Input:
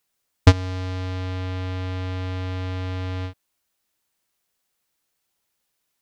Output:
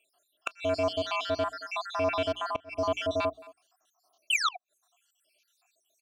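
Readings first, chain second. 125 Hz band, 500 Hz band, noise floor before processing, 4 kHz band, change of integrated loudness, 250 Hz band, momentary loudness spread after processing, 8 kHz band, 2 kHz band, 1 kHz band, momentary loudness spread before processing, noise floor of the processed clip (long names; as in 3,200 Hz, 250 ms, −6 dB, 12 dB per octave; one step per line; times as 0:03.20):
−21.0 dB, +4.5 dB, −76 dBFS, +3.0 dB, −4.5 dB, −8.0 dB, 8 LU, can't be measured, +2.5 dB, +3.0 dB, 10 LU, −78 dBFS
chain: time-frequency cells dropped at random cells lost 73%
bass and treble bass −1 dB, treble +12 dB
mains-hum notches 60/120/180/240/300/360/420 Hz
far-end echo of a speakerphone 220 ms, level −22 dB
sound drawn into the spectrogram fall, 0:04.30–0:04.56, 720–3,200 Hz −21 dBFS
in parallel at −7 dB: sine wavefolder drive 18 dB, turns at −8 dBFS
on the sum: formant filter a
high-shelf EQ 5,700 Hz +4.5 dB
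comb filter 3 ms, depth 71%
gate with flip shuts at −23 dBFS, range −27 dB
level +7 dB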